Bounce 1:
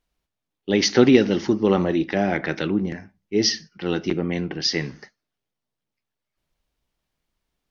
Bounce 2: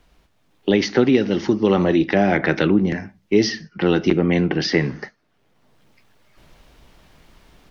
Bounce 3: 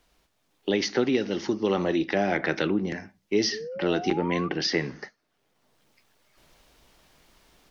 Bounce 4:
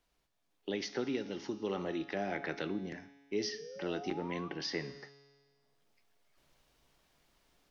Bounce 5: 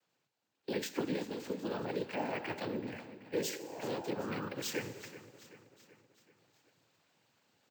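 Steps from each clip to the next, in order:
level rider gain up to 8 dB; treble shelf 4.9 kHz -10 dB; three bands compressed up and down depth 70%
tone controls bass -6 dB, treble +6 dB; painted sound rise, 3.52–4.49 s, 410–1200 Hz -29 dBFS; trim -6.5 dB
feedback comb 140 Hz, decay 1.6 s, mix 70%; trim -2 dB
noise-vocoded speech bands 8; feedback delay 381 ms, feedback 54%, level -15 dB; careless resampling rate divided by 2×, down filtered, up hold

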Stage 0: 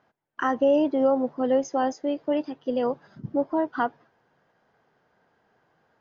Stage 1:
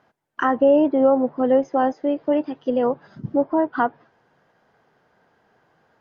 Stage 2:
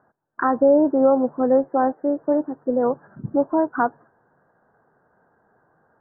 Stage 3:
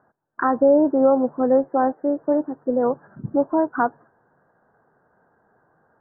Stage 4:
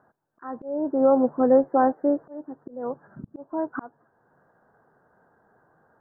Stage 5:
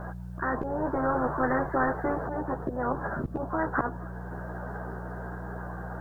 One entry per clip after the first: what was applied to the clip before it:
low-pass that closes with the level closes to 2.2 kHz, closed at -22.5 dBFS; trim +5 dB
steep low-pass 1.7 kHz 72 dB/octave
no audible change
slow attack 581 ms
chorus voices 6, 0.88 Hz, delay 14 ms, depth 1.9 ms; mains buzz 60 Hz, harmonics 3, -59 dBFS; spectrum-flattening compressor 4:1

